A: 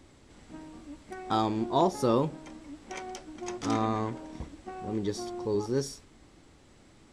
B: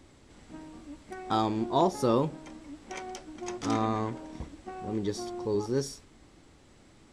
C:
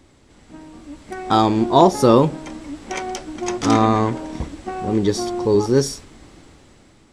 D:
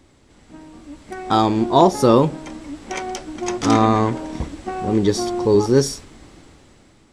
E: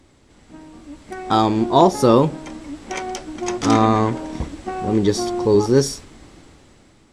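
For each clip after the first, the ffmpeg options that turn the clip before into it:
-af anull
-af "dynaudnorm=f=400:g=5:m=2.99,volume=1.5"
-af "dynaudnorm=f=350:g=9:m=3.76,volume=0.891"
-ar 48000 -c:a libmp3lame -b:a 320k

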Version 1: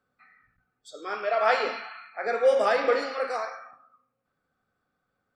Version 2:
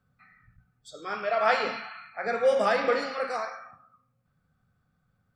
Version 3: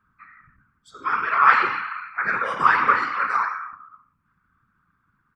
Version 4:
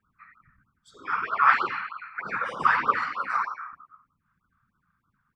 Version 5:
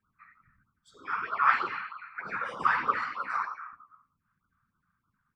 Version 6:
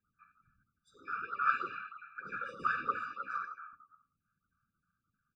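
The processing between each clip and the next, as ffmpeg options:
-af "lowshelf=f=220:t=q:w=1.5:g=13"
-af "firequalizer=gain_entry='entry(410,0);entry(610,-22);entry(1000,15);entry(3900,-4)':delay=0.05:min_phase=1,afftfilt=real='hypot(re,im)*cos(2*PI*random(0))':imag='hypot(re,im)*sin(2*PI*random(1))':win_size=512:overlap=0.75,volume=2"
-af "afftfilt=real='re*(1-between(b*sr/1024,300*pow(2200/300,0.5+0.5*sin(2*PI*3.2*pts/sr))/1.41,300*pow(2200/300,0.5+0.5*sin(2*PI*3.2*pts/sr))*1.41))':imag='im*(1-between(b*sr/1024,300*pow(2200/300,0.5+0.5*sin(2*PI*3.2*pts/sr))/1.41,300*pow(2200/300,0.5+0.5*sin(2*PI*3.2*pts/sr))*1.41))':win_size=1024:overlap=0.75,volume=0.631"
-af "flanger=delay=8.5:depth=4:regen=-75:speed=1.6:shape=sinusoidal"
-af "afftfilt=real='re*eq(mod(floor(b*sr/1024/580),2),0)':imag='im*eq(mod(floor(b*sr/1024/580),2),0)':win_size=1024:overlap=0.75,volume=0.531"

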